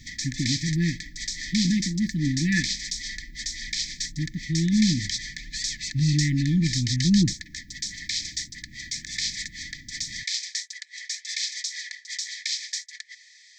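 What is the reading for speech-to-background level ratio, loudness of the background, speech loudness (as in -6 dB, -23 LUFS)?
5.5 dB, -30.5 LUFS, -25.0 LUFS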